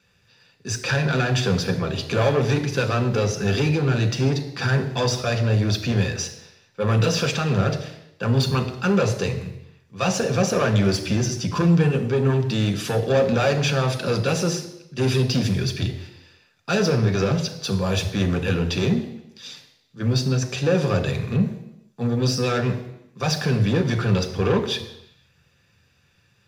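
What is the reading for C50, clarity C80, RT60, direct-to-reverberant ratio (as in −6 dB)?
10.5 dB, 12.5 dB, 0.85 s, 4.5 dB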